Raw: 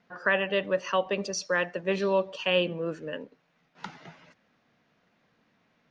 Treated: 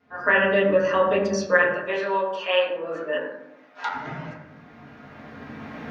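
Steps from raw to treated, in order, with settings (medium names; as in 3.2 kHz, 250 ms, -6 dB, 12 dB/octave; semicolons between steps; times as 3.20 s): recorder AGC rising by 10 dB/s; 1.62–3.94 s: high-pass 610 Hz 12 dB/octave; reverberation RT60 0.90 s, pre-delay 5 ms, DRR -12 dB; trim -5.5 dB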